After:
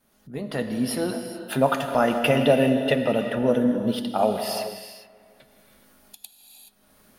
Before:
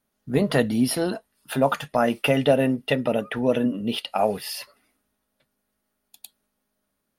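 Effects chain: fade-in on the opening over 1.45 s; 3.25–4.23 s: peaking EQ 2.5 kHz -14 dB 0.58 oct; feedback echo behind a low-pass 161 ms, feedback 41%, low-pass 1.8 kHz, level -14.5 dB; gated-style reverb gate 450 ms flat, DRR 6 dB; upward compressor, threshold -39 dBFS

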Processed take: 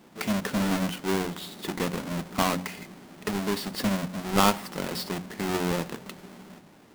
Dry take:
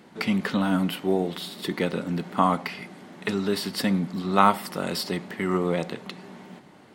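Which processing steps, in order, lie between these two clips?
square wave that keeps the level; de-hum 45.6 Hz, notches 6; trim -7 dB

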